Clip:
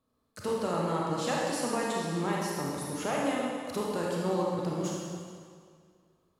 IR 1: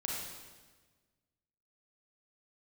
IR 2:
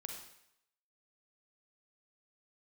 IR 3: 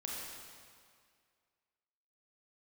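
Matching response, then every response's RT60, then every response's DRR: 3; 1.4 s, 0.75 s, 2.1 s; -3.5 dB, 2.0 dB, -4.0 dB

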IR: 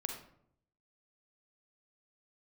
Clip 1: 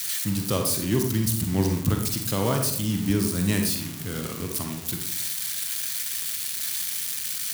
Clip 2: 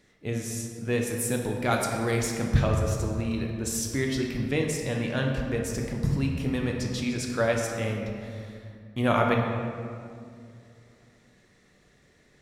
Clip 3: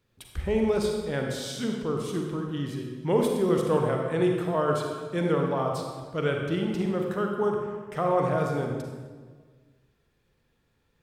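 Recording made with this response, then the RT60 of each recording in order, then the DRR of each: 1; 0.70 s, 2.3 s, 1.5 s; 3.0 dB, 0.5 dB, 1.0 dB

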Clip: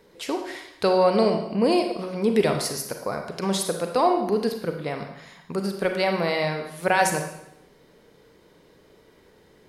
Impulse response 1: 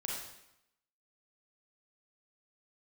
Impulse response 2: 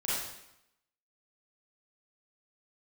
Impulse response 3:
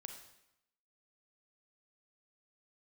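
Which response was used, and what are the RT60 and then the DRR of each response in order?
3; 0.80 s, 0.80 s, 0.85 s; -3.5 dB, -9.5 dB, 4.5 dB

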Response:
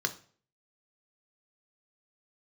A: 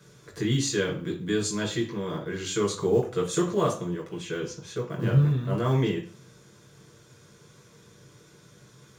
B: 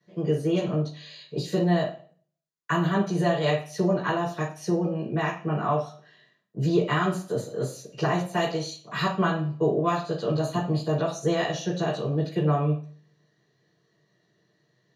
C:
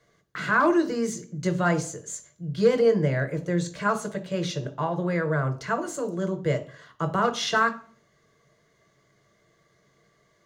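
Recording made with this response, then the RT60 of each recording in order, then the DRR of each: C; 0.45 s, 0.45 s, 0.45 s; -2.0 dB, -9.5 dB, 7.0 dB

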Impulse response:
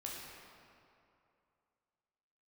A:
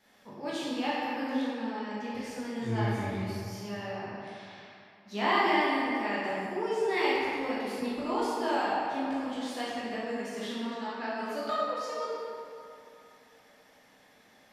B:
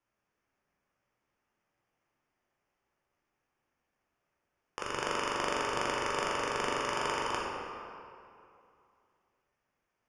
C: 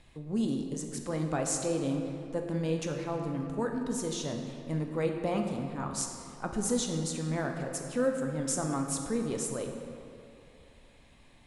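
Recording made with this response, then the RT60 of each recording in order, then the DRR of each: B; 2.7 s, 2.6 s, 2.6 s; -9.0 dB, -3.5 dB, 2.5 dB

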